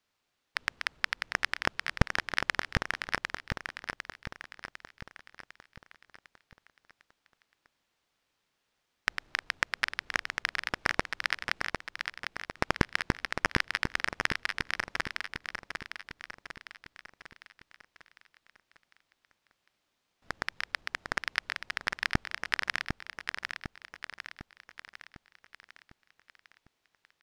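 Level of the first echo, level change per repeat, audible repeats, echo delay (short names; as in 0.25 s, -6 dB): -6.0 dB, -6.0 dB, 5, 0.752 s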